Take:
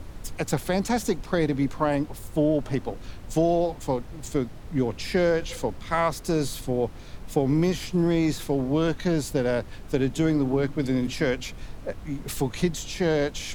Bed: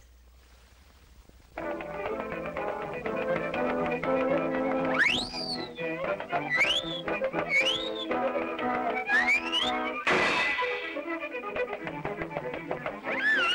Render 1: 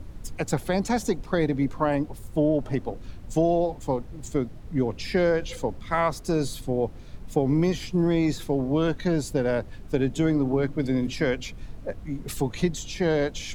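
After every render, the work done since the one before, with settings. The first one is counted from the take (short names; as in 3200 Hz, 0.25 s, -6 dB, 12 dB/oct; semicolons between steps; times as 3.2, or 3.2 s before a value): denoiser 7 dB, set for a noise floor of -41 dBFS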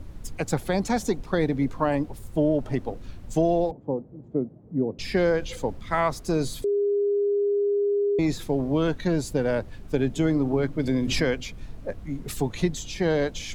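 3.71–4.99 Butterworth band-pass 290 Hz, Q 0.6; 6.64–8.19 bleep 406 Hz -20 dBFS; 10.87–11.41 backwards sustainer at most 41 dB/s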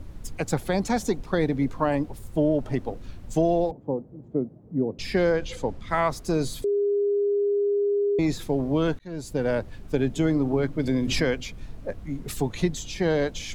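5.32–5.89 Bessel low-pass 9000 Hz; 8.99–9.47 fade in linear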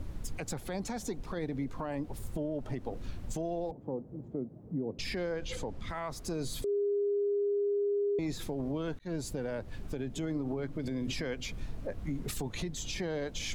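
compressor, threshold -29 dBFS, peak gain reduction 11.5 dB; limiter -26.5 dBFS, peak gain reduction 10 dB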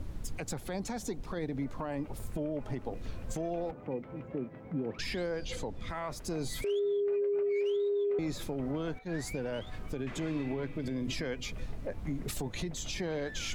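add bed -23.5 dB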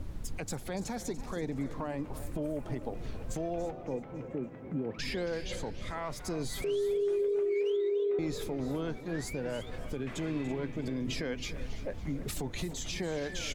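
feedback echo 0.332 s, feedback 30%, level -16 dB; warbling echo 0.282 s, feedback 44%, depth 195 cents, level -14.5 dB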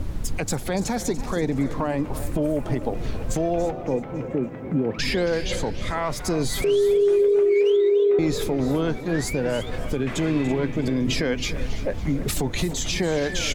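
gain +11.5 dB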